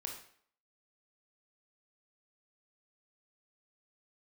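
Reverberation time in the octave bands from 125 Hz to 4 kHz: 0.45, 0.55, 0.60, 0.60, 0.55, 0.50 seconds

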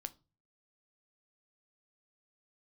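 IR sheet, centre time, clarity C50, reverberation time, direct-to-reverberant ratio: 2 ms, 21.5 dB, 0.30 s, 11.0 dB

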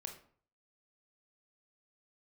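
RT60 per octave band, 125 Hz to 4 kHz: 0.60, 0.50, 0.50, 0.50, 0.40, 0.30 seconds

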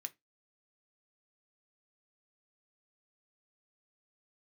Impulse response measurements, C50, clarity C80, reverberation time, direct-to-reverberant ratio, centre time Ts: 24.5 dB, 34.5 dB, 0.20 s, 8.5 dB, 3 ms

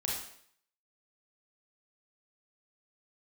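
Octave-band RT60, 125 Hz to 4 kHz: 0.60, 0.60, 0.65, 0.60, 0.65, 0.60 seconds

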